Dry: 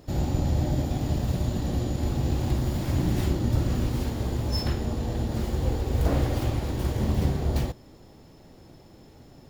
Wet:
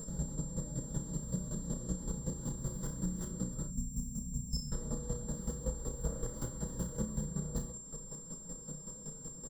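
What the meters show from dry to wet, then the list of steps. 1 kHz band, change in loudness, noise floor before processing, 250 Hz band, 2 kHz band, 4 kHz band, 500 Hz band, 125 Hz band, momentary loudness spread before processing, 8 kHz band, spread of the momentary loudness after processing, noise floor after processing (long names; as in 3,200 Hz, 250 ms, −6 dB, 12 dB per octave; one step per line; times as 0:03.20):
−18.5 dB, −12.5 dB, −51 dBFS, −11.0 dB, −19.5 dB, −14.5 dB, −12.5 dB, −14.0 dB, 4 LU, +4.5 dB, 6 LU, −49 dBFS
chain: gain on a spectral selection 0:03.67–0:04.72, 260–5,100 Hz −21 dB
low-shelf EQ 440 Hz +8 dB
comb filter 6.1 ms, depth 48%
downward compressor 6 to 1, threshold −29 dBFS, peak gain reduction 16.5 dB
steady tone 7,400 Hz −45 dBFS
square-wave tremolo 5.3 Hz, depth 65%, duty 20%
phaser with its sweep stopped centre 490 Hz, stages 8
on a send: flutter between parallel walls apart 5.7 metres, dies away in 0.26 s
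on the sum: level +1.5 dB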